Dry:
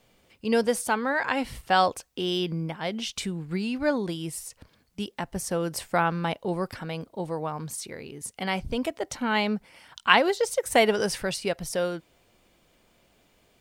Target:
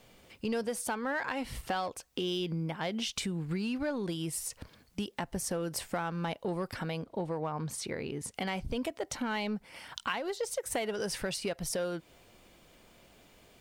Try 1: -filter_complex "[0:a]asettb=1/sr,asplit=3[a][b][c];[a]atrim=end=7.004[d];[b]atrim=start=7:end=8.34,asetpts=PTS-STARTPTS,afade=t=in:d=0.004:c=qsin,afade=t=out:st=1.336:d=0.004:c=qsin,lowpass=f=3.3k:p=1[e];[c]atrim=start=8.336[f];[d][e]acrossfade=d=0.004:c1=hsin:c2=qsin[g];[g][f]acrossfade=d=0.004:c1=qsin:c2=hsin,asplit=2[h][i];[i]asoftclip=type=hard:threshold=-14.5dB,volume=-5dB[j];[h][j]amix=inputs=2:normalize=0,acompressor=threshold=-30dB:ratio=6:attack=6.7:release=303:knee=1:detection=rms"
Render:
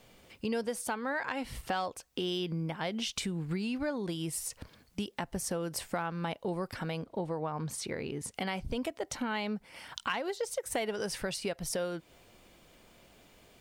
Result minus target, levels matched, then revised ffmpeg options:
hard clip: distortion -10 dB
-filter_complex "[0:a]asettb=1/sr,asplit=3[a][b][c];[a]atrim=end=7.004[d];[b]atrim=start=7:end=8.34,asetpts=PTS-STARTPTS,afade=t=in:d=0.004:c=qsin,afade=t=out:st=1.336:d=0.004:c=qsin,lowpass=f=3.3k:p=1[e];[c]atrim=start=8.336[f];[d][e]acrossfade=d=0.004:c1=hsin:c2=qsin[g];[g][f]acrossfade=d=0.004:c1=qsin:c2=hsin,asplit=2[h][i];[i]asoftclip=type=hard:threshold=-25.5dB,volume=-5dB[j];[h][j]amix=inputs=2:normalize=0,acompressor=threshold=-30dB:ratio=6:attack=6.7:release=303:knee=1:detection=rms"

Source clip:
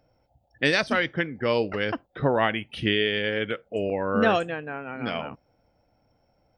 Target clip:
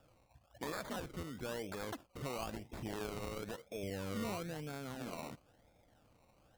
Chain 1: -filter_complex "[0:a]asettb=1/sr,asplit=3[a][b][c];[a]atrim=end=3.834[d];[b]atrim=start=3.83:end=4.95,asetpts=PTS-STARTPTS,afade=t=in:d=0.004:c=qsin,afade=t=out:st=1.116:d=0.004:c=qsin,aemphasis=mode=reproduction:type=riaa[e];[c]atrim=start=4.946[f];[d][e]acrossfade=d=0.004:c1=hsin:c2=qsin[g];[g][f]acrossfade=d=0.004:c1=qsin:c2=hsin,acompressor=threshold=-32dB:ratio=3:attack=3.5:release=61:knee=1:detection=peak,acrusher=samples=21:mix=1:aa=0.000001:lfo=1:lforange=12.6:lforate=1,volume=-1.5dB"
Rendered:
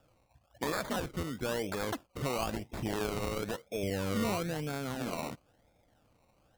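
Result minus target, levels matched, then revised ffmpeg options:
compressor: peak gain reduction -8 dB
-filter_complex "[0:a]asettb=1/sr,asplit=3[a][b][c];[a]atrim=end=3.834[d];[b]atrim=start=3.83:end=4.95,asetpts=PTS-STARTPTS,afade=t=in:d=0.004:c=qsin,afade=t=out:st=1.116:d=0.004:c=qsin,aemphasis=mode=reproduction:type=riaa[e];[c]atrim=start=4.946[f];[d][e]acrossfade=d=0.004:c1=hsin:c2=qsin[g];[g][f]acrossfade=d=0.004:c1=qsin:c2=hsin,acompressor=threshold=-44dB:ratio=3:attack=3.5:release=61:knee=1:detection=peak,acrusher=samples=21:mix=1:aa=0.000001:lfo=1:lforange=12.6:lforate=1,volume=-1.5dB"

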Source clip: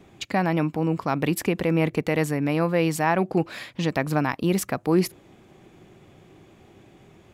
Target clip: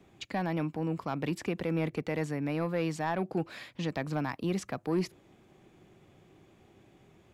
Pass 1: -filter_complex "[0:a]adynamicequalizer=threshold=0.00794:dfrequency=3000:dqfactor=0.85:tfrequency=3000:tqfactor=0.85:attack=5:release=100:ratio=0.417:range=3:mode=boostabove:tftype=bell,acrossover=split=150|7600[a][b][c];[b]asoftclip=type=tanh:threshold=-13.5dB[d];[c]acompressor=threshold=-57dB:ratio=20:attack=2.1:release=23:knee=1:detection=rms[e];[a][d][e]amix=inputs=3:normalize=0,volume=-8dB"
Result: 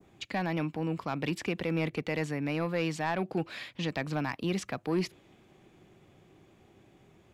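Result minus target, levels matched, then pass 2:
4000 Hz band +4.0 dB
-filter_complex "[0:a]acrossover=split=150|7600[a][b][c];[b]asoftclip=type=tanh:threshold=-13.5dB[d];[c]acompressor=threshold=-57dB:ratio=20:attack=2.1:release=23:knee=1:detection=rms[e];[a][d][e]amix=inputs=3:normalize=0,volume=-8dB"

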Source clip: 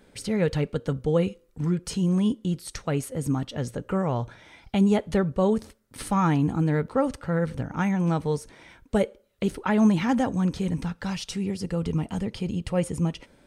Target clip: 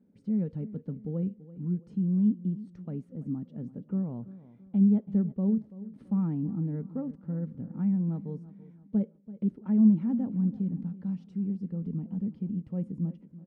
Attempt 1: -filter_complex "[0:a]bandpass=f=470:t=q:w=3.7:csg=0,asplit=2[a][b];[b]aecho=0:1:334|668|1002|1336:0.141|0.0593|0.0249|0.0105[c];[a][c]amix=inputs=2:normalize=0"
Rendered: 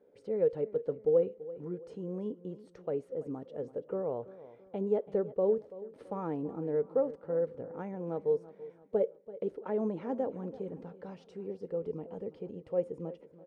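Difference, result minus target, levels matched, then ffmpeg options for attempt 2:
500 Hz band +18.0 dB
-filter_complex "[0:a]bandpass=f=210:t=q:w=3.7:csg=0,asplit=2[a][b];[b]aecho=0:1:334|668|1002|1336:0.141|0.0593|0.0249|0.0105[c];[a][c]amix=inputs=2:normalize=0"

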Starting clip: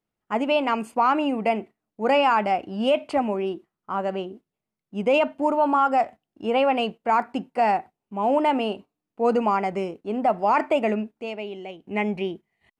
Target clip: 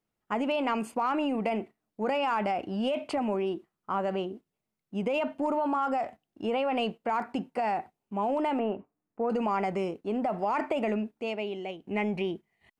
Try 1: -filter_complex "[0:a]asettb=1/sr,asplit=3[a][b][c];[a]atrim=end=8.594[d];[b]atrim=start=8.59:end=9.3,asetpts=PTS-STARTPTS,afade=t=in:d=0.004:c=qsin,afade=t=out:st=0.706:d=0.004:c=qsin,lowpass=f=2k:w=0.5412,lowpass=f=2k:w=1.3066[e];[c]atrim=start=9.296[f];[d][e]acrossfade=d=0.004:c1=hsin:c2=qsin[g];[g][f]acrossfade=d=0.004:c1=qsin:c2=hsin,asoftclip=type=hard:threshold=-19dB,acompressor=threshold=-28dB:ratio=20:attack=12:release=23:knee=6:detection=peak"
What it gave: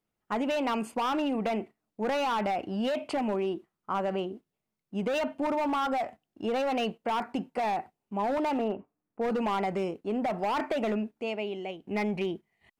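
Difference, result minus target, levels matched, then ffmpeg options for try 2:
hard clip: distortion +31 dB
-filter_complex "[0:a]asettb=1/sr,asplit=3[a][b][c];[a]atrim=end=8.594[d];[b]atrim=start=8.59:end=9.3,asetpts=PTS-STARTPTS,afade=t=in:d=0.004:c=qsin,afade=t=out:st=0.706:d=0.004:c=qsin,lowpass=f=2k:w=0.5412,lowpass=f=2k:w=1.3066[e];[c]atrim=start=9.296[f];[d][e]acrossfade=d=0.004:c1=hsin:c2=qsin[g];[g][f]acrossfade=d=0.004:c1=qsin:c2=hsin,asoftclip=type=hard:threshold=-11.5dB,acompressor=threshold=-28dB:ratio=20:attack=12:release=23:knee=6:detection=peak"

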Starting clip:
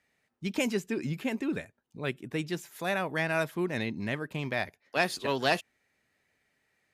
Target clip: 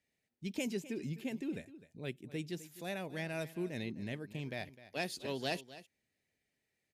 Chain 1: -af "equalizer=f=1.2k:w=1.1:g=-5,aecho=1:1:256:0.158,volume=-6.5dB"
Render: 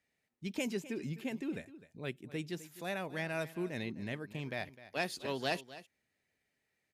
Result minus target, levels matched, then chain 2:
1000 Hz band +2.5 dB
-af "equalizer=f=1.2k:w=1.1:g=-12.5,aecho=1:1:256:0.158,volume=-6.5dB"

